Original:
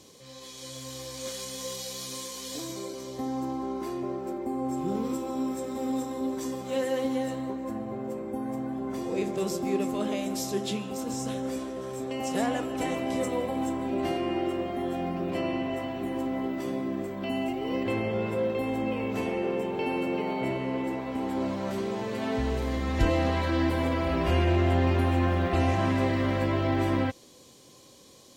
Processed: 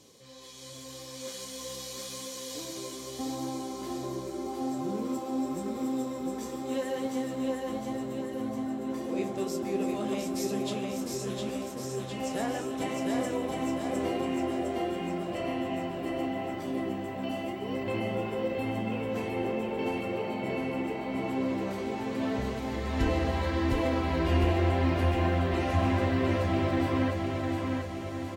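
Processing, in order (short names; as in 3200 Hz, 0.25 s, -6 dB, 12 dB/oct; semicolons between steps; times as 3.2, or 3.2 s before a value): feedback echo 0.708 s, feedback 56%, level -3 dB; flange 0.84 Hz, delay 6.8 ms, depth 8 ms, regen -47%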